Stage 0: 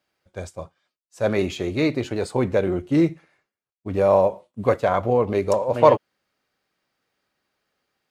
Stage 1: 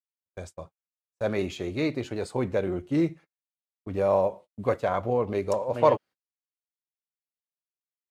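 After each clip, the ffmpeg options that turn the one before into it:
-af "agate=range=-39dB:threshold=-38dB:ratio=16:detection=peak,volume=-6dB"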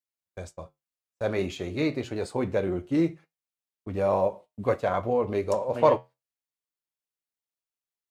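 -af "flanger=delay=8.1:depth=5.2:regen=-69:speed=0.27:shape=triangular,volume=4.5dB"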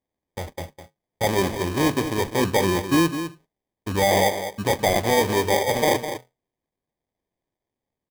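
-af "alimiter=limit=-17.5dB:level=0:latency=1:release=24,acrusher=samples=32:mix=1:aa=0.000001,aecho=1:1:205:0.316,volume=6.5dB"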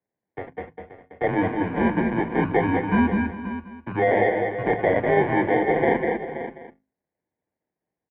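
-af "bandreject=f=50:t=h:w=6,bandreject=f=100:t=h:w=6,bandreject=f=150:t=h:w=6,bandreject=f=200:t=h:w=6,bandreject=f=250:t=h:w=6,bandreject=f=300:t=h:w=6,bandreject=f=350:t=h:w=6,aecho=1:1:198|528:0.501|0.266,highpass=f=180:t=q:w=0.5412,highpass=f=180:t=q:w=1.307,lowpass=f=2.4k:t=q:w=0.5176,lowpass=f=2.4k:t=q:w=0.7071,lowpass=f=2.4k:t=q:w=1.932,afreqshift=-86"

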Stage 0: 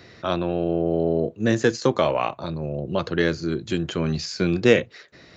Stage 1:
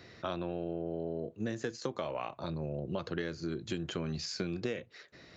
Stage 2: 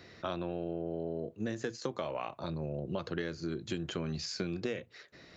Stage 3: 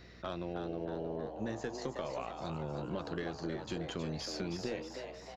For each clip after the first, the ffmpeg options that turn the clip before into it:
-af "acompressor=threshold=-25dB:ratio=12,volume=-6.5dB"
-af "bandreject=f=60:t=h:w=6,bandreject=f=120:t=h:w=6"
-filter_complex "[0:a]aeval=exprs='(tanh(15.8*val(0)+0.3)-tanh(0.3))/15.8':c=same,aeval=exprs='val(0)+0.00178*(sin(2*PI*60*n/s)+sin(2*PI*2*60*n/s)/2+sin(2*PI*3*60*n/s)/3+sin(2*PI*4*60*n/s)/4+sin(2*PI*5*60*n/s)/5)':c=same,asplit=8[a][b][c][d][e][f][g][h];[b]adelay=316,afreqshift=140,volume=-7dB[i];[c]adelay=632,afreqshift=280,volume=-12.2dB[j];[d]adelay=948,afreqshift=420,volume=-17.4dB[k];[e]adelay=1264,afreqshift=560,volume=-22.6dB[l];[f]adelay=1580,afreqshift=700,volume=-27.8dB[m];[g]adelay=1896,afreqshift=840,volume=-33dB[n];[h]adelay=2212,afreqshift=980,volume=-38.2dB[o];[a][i][j][k][l][m][n][o]amix=inputs=8:normalize=0,volume=-2dB"

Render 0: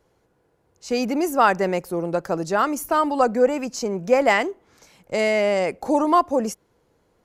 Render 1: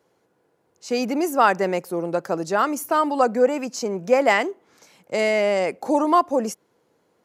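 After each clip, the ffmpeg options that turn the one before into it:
-af "highpass=170"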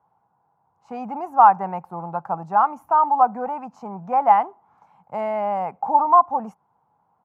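-af "firequalizer=gain_entry='entry(160,0);entry(320,-16);entry(540,-13);entry(810,11);entry(1800,-15);entry(2600,-17);entry(4500,-30)':delay=0.05:min_phase=1"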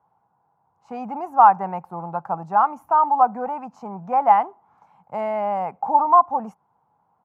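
-af anull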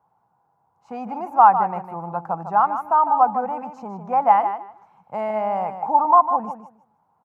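-af "aecho=1:1:153|306|459:0.335|0.0636|0.0121"

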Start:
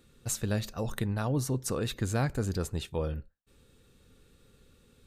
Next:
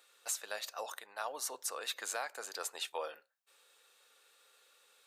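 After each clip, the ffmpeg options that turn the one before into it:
-af "highpass=f=650:w=0.5412,highpass=f=650:w=1.3066,alimiter=level_in=3dB:limit=-24dB:level=0:latency=1:release=478,volume=-3dB,volume=2.5dB"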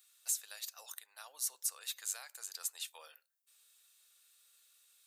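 -af "aderivative,volume=2dB"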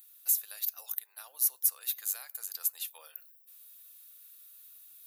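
-af "areverse,acompressor=mode=upward:threshold=-59dB:ratio=2.5,areverse,aexciter=amount=9.1:drive=2.9:freq=11k"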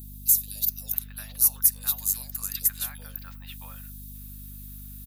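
-filter_complex "[0:a]acrossover=split=570|3000[a][b][c];[a]adelay=40[d];[b]adelay=670[e];[d][e][c]amix=inputs=3:normalize=0,aeval=exprs='val(0)+0.00355*(sin(2*PI*50*n/s)+sin(2*PI*2*50*n/s)/2+sin(2*PI*3*50*n/s)/3+sin(2*PI*4*50*n/s)/4+sin(2*PI*5*50*n/s)/5)':c=same,volume=7.5dB"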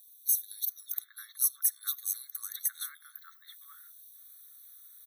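-af "afreqshift=-40,afftfilt=real='re*eq(mod(floor(b*sr/1024/1100),2),1)':imag='im*eq(mod(floor(b*sr/1024/1100),2),1)':win_size=1024:overlap=0.75,volume=-4dB"

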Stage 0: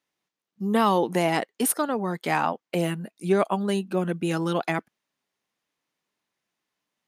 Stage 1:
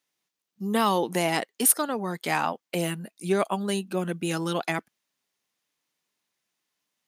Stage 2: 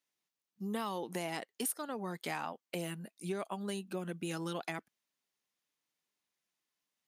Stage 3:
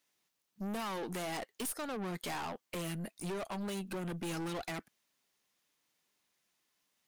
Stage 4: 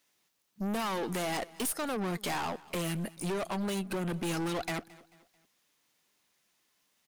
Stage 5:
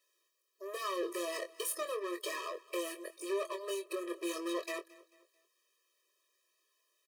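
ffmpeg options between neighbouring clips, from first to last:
-af "highshelf=f=2.9k:g=9,volume=-3dB"
-af "acompressor=threshold=-27dB:ratio=4,volume=-7.5dB"
-af "aeval=exprs='(tanh(178*val(0)+0.3)-tanh(0.3))/178':c=same,volume=9dB"
-af "aecho=1:1:220|440|660:0.0841|0.0353|0.0148,volume=5.5dB"
-filter_complex "[0:a]asplit=2[a][b];[b]adelay=23,volume=-7.5dB[c];[a][c]amix=inputs=2:normalize=0,afftfilt=real='re*eq(mod(floor(b*sr/1024/330),2),1)':imag='im*eq(mod(floor(b*sr/1024/330),2),1)':win_size=1024:overlap=0.75,volume=-1.5dB"

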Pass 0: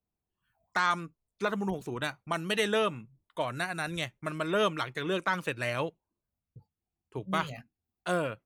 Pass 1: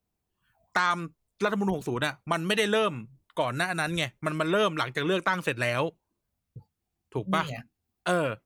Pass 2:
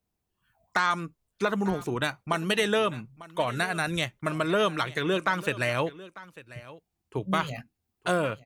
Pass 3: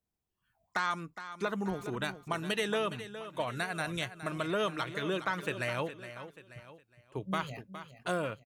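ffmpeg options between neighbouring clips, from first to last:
-af "acompressor=threshold=-30dB:ratio=2,volume=6.5dB"
-af "aecho=1:1:897:0.119"
-af "aecho=1:1:414:0.251,volume=-7dB"

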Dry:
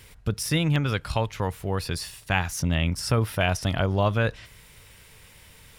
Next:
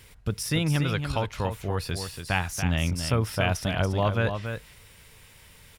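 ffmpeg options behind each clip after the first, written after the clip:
-af "aecho=1:1:284:0.422,volume=-2dB"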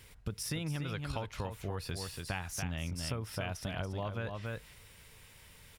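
-af "acompressor=threshold=-29dB:ratio=6,volume=-4.5dB"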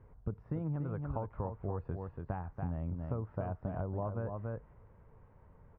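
-af "lowpass=f=1.1k:w=0.5412,lowpass=f=1.1k:w=1.3066,volume=1dB"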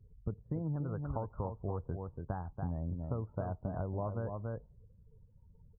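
-af "afftdn=nr=30:nf=-53"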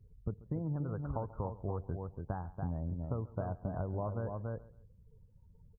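-af "aecho=1:1:137|274:0.106|0.0318"

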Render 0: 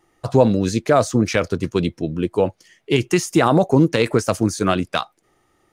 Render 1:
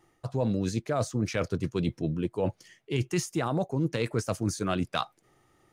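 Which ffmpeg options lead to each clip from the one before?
-af "equalizer=f=130:w=1.9:g=6,areverse,acompressor=threshold=-22dB:ratio=6,areverse,volume=-3dB"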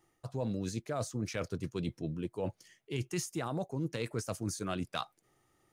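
-af "highshelf=f=6.2k:g=7,volume=-7.5dB"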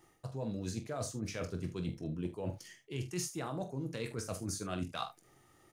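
-af "areverse,acompressor=threshold=-42dB:ratio=6,areverse,aecho=1:1:22|45|75:0.316|0.316|0.178,volume=6dB"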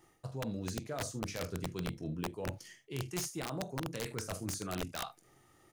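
-af "aeval=exprs='(mod(26.6*val(0)+1,2)-1)/26.6':c=same"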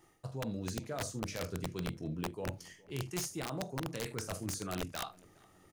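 -filter_complex "[0:a]asplit=2[a][b];[b]adelay=414,lowpass=f=2.4k:p=1,volume=-23.5dB,asplit=2[c][d];[d]adelay=414,lowpass=f=2.4k:p=1,volume=0.5,asplit=2[e][f];[f]adelay=414,lowpass=f=2.4k:p=1,volume=0.5[g];[a][c][e][g]amix=inputs=4:normalize=0"

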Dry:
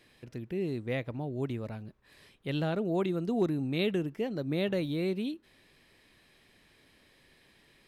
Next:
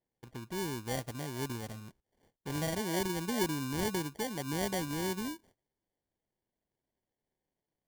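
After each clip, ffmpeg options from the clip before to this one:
-af "agate=range=-23dB:threshold=-56dB:ratio=16:detection=peak,acrusher=samples=34:mix=1:aa=0.000001,adynamicequalizer=threshold=0.00282:dfrequency=4500:dqfactor=0.7:tfrequency=4500:tqfactor=0.7:attack=5:release=100:ratio=0.375:range=3:mode=boostabove:tftype=highshelf,volume=-4dB"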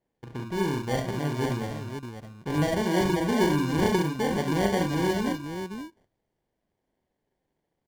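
-filter_complex "[0:a]lowpass=f=2.4k:p=1,asplit=2[a][b];[b]aecho=0:1:40|67|532:0.562|0.398|0.447[c];[a][c]amix=inputs=2:normalize=0,volume=8dB"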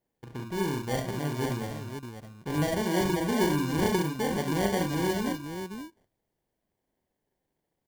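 -af "highshelf=f=8.6k:g=8.5,volume=-2.5dB"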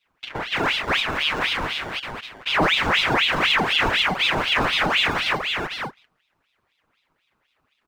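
-filter_complex "[0:a]asplit=2[a][b];[b]highpass=f=720:p=1,volume=23dB,asoftclip=type=tanh:threshold=-12.5dB[c];[a][c]amix=inputs=2:normalize=0,lowpass=f=1k:p=1,volume=-6dB,aecho=1:1:6.4:0.8,aeval=exprs='val(0)*sin(2*PI*1800*n/s+1800*0.75/4*sin(2*PI*4*n/s))':c=same,volume=3dB"

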